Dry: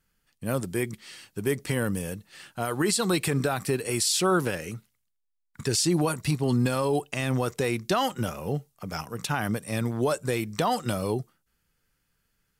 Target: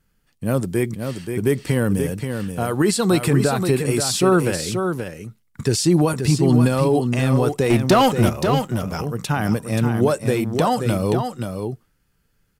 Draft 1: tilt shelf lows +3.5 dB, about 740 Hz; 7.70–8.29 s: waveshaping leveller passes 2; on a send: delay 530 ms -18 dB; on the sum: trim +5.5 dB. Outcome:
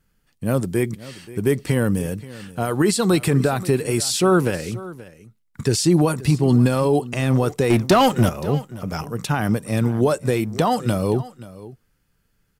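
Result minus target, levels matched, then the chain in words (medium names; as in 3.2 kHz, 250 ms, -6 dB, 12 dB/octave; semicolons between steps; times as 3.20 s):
echo-to-direct -11.5 dB
tilt shelf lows +3.5 dB, about 740 Hz; 7.70–8.29 s: waveshaping leveller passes 2; on a send: delay 530 ms -6.5 dB; on the sum: trim +5.5 dB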